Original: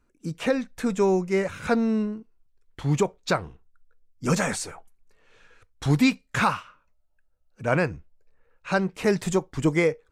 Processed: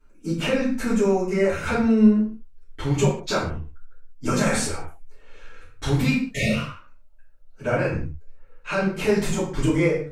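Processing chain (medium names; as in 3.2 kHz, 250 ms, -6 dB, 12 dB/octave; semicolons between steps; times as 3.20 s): 0.52–1.63 s: peaking EQ 3.4 kHz -7.5 dB 0.27 oct; 6.30–6.55 s: spectral replace 700–1800 Hz both; peak limiter -20.5 dBFS, peak gain reduction 10 dB; reverberation, pre-delay 3 ms, DRR -11.5 dB; trim -4 dB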